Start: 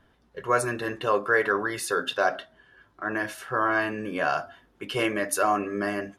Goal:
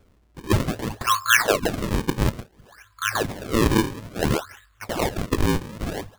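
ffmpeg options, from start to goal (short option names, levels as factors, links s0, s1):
-af "afftfilt=real='re*(1-between(b*sr/4096,110,1000))':imag='im*(1-between(b*sr/4096,110,1000))':win_size=4096:overlap=0.75,equalizer=f=340:t=o:w=0.76:g=-9.5,acrusher=samples=37:mix=1:aa=0.000001:lfo=1:lforange=59.2:lforate=0.58,volume=2.37"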